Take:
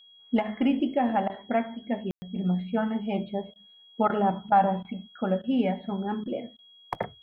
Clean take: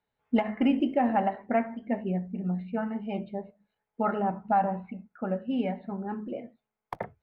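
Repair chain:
notch filter 3,300 Hz, Q 30
ambience match 0:02.11–0:02.22
repair the gap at 0:01.28/0:03.54/0:04.08/0:04.50/0:04.83/0:05.42/0:06.24/0:06.57, 16 ms
level 0 dB, from 0:02.36 −4 dB

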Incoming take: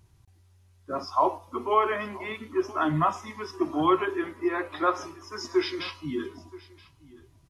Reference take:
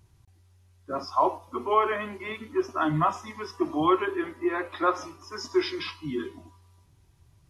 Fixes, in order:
echo removal 975 ms −21 dB

